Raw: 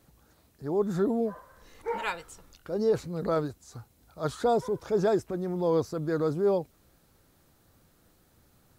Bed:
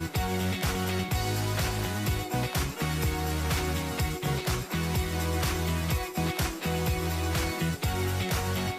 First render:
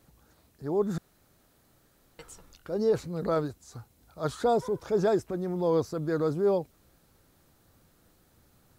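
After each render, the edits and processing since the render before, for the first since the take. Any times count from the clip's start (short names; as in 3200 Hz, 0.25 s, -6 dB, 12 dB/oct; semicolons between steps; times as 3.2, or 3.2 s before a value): 0.98–2.19 room tone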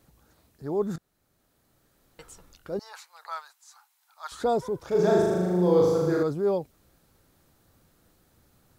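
0.96–2.24 fade in, from -12 dB; 2.79–4.32 elliptic high-pass 860 Hz, stop band 70 dB; 4.87–6.23 flutter echo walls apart 6.7 m, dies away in 1.4 s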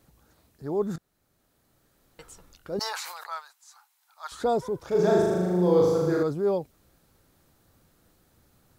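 2.71–3.34 sustainer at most 32 dB/s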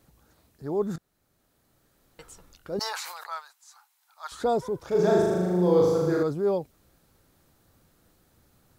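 nothing audible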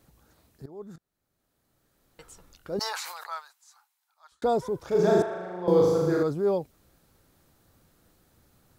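0.66–2.71 fade in, from -18.5 dB; 3.27–4.42 fade out; 5.22–5.68 three-band isolator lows -19 dB, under 580 Hz, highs -21 dB, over 3200 Hz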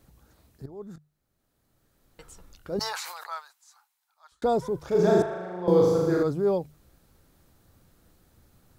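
low shelf 130 Hz +7.5 dB; notches 50/100/150 Hz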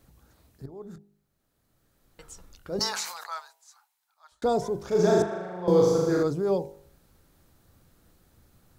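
de-hum 50.74 Hz, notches 19; dynamic EQ 6200 Hz, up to +7 dB, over -58 dBFS, Q 1.4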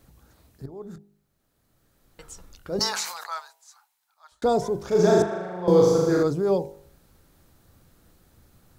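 gain +3 dB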